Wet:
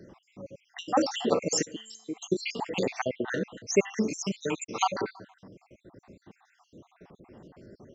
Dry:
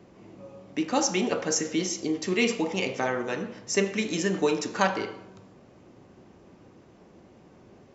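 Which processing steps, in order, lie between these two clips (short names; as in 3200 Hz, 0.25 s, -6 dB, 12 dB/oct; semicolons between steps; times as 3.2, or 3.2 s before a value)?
random spectral dropouts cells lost 69%; 1.65–2.17 resonator 220 Hz, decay 1.1 s, mix 70%; 4.1–4.71 bell 410 Hz -11 dB 1 oct; gain +3.5 dB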